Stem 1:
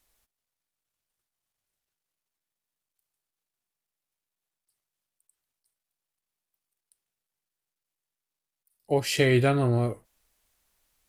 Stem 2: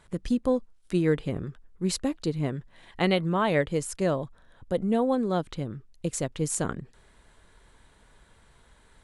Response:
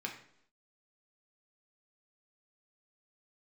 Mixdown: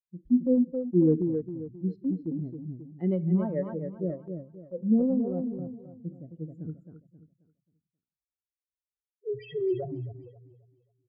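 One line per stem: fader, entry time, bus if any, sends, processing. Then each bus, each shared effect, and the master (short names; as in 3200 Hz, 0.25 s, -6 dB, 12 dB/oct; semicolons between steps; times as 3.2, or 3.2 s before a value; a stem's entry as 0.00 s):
+0.5 dB, 0.35 s, send -9 dB, echo send -15 dB, loudest bins only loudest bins 1
-1.5 dB, 0.00 s, send -11.5 dB, echo send -5 dB, low shelf 270 Hz +9 dB; spectral expander 2.5:1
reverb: on, RT60 0.70 s, pre-delay 3 ms
echo: feedback echo 0.267 s, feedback 33%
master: speaker cabinet 130–3800 Hz, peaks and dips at 140 Hz -6 dB, 210 Hz -5 dB, 330 Hz +5 dB, 1100 Hz -5 dB, 1600 Hz +7 dB, 2500 Hz -5 dB; harmonic tremolo 1.8 Hz, depth 50%, crossover 440 Hz; transient shaper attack -1 dB, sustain +4 dB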